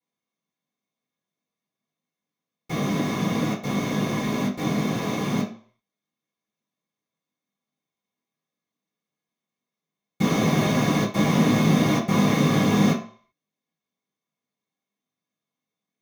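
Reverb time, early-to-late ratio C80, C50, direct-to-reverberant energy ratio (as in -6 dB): 0.50 s, 13.0 dB, 8.5 dB, -9.0 dB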